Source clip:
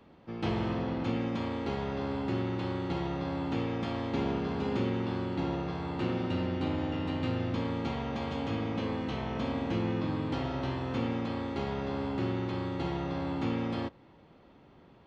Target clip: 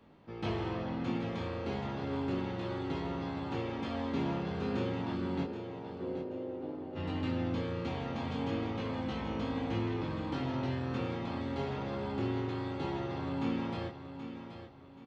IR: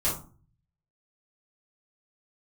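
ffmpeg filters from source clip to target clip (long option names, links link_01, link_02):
-filter_complex "[0:a]asplit=3[link_01][link_02][link_03];[link_01]afade=type=out:start_time=5.43:duration=0.02[link_04];[link_02]bandpass=frequency=460:width_type=q:width=2.1:csg=0,afade=type=in:start_time=5.43:duration=0.02,afade=type=out:start_time=6.95:duration=0.02[link_05];[link_03]afade=type=in:start_time=6.95:duration=0.02[link_06];[link_04][link_05][link_06]amix=inputs=3:normalize=0,flanger=delay=19:depth=4.7:speed=0.32,aecho=1:1:778|1556|2334|3112:0.316|0.101|0.0324|0.0104"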